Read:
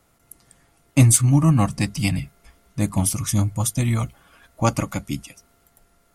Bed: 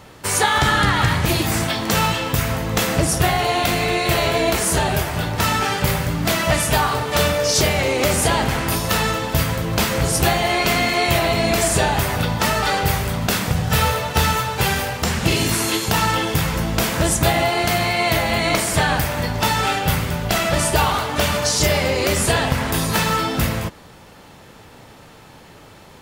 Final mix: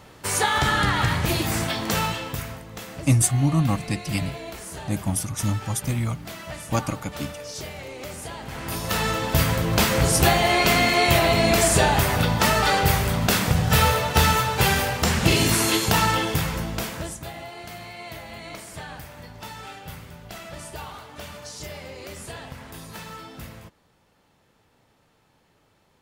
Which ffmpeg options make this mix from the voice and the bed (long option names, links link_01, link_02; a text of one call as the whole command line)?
ffmpeg -i stem1.wav -i stem2.wav -filter_complex "[0:a]adelay=2100,volume=-4.5dB[link_01];[1:a]volume=13dB,afade=type=out:start_time=1.85:duration=0.8:silence=0.211349,afade=type=in:start_time=8.43:duration=1.04:silence=0.133352,afade=type=out:start_time=15.83:duration=1.37:silence=0.112202[link_02];[link_01][link_02]amix=inputs=2:normalize=0" out.wav